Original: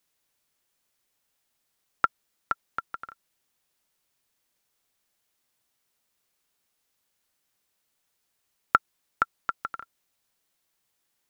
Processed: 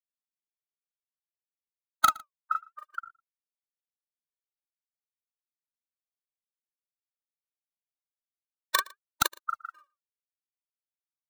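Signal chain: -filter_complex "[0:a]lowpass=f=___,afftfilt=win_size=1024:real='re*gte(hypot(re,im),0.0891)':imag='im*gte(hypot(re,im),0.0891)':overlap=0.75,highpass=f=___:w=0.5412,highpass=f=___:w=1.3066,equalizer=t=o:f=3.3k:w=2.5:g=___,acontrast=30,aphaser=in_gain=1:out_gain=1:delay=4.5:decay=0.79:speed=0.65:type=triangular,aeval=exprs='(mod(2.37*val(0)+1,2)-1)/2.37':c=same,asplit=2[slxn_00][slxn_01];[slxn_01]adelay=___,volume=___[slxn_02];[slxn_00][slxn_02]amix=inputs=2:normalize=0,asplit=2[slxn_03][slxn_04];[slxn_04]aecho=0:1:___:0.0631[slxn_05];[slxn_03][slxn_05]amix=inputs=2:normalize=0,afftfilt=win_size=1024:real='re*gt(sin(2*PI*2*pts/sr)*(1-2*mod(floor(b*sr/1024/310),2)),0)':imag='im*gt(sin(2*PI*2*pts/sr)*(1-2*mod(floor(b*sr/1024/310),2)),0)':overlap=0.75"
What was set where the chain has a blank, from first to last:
5k, 660, 660, -13, 39, -3dB, 115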